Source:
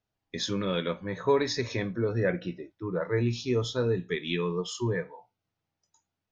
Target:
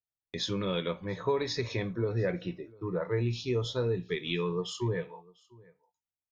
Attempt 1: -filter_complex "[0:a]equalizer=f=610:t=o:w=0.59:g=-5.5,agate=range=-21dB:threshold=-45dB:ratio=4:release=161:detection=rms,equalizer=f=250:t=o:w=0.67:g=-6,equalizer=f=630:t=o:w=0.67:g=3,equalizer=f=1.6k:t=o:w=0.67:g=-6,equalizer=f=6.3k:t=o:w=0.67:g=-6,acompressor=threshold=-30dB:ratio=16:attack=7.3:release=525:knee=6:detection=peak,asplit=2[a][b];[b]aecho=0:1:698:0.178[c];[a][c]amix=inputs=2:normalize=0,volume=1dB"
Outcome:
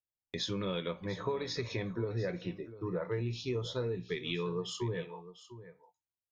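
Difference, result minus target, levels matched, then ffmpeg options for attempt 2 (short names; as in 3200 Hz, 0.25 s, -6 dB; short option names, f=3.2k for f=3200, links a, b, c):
compressor: peak gain reduction +7 dB; echo-to-direct +10 dB
-filter_complex "[0:a]equalizer=f=610:t=o:w=0.59:g=-5.5,agate=range=-21dB:threshold=-45dB:ratio=4:release=161:detection=rms,equalizer=f=250:t=o:w=0.67:g=-6,equalizer=f=630:t=o:w=0.67:g=3,equalizer=f=1.6k:t=o:w=0.67:g=-6,equalizer=f=6.3k:t=o:w=0.67:g=-6,acompressor=threshold=-22.5dB:ratio=16:attack=7.3:release=525:knee=6:detection=peak,asplit=2[a][b];[b]aecho=0:1:698:0.0562[c];[a][c]amix=inputs=2:normalize=0,volume=1dB"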